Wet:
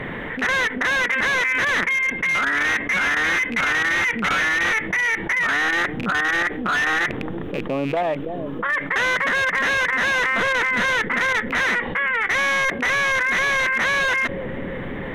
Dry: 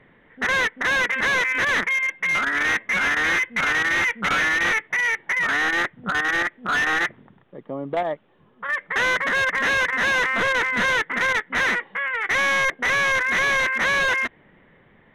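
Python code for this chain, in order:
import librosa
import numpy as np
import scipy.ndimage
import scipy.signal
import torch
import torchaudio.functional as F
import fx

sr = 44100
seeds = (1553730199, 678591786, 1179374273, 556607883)

y = fx.rattle_buzz(x, sr, strikes_db=-44.0, level_db=-32.0)
y = fx.echo_bbd(y, sr, ms=329, stages=1024, feedback_pct=78, wet_db=-17.0)
y = fx.env_flatten(y, sr, amount_pct=70)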